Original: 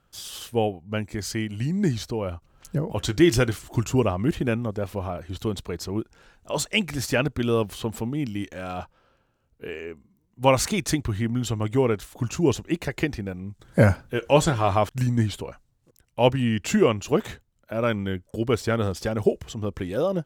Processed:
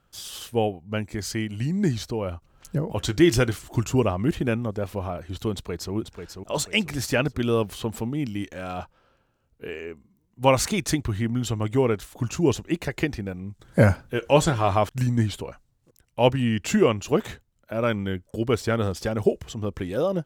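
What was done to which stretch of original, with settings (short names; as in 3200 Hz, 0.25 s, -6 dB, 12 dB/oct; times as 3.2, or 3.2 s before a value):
5.53–5.94 echo throw 0.49 s, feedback 40%, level -7 dB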